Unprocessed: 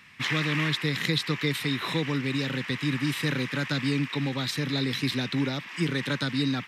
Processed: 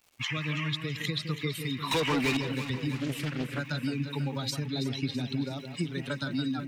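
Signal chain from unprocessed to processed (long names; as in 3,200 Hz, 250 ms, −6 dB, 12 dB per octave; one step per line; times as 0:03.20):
spectral dynamics exaggerated over time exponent 2
surface crackle 400 per second −54 dBFS
0:04.66–0:05.25: high-frequency loss of the air 62 metres
downward compressor, threshold −32 dBFS, peak gain reduction 9 dB
parametric band 1,800 Hz −6 dB 0.38 octaves
0:01.91–0:02.37: mid-hump overdrive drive 28 dB, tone 7,300 Hz, clips at −24 dBFS
on a send: delay that swaps between a low-pass and a high-pass 164 ms, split 1,900 Hz, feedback 76%, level −8 dB
0:02.95–0:03.59: on the sum: highs frequency-modulated by the lows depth 0.55 ms
level +4 dB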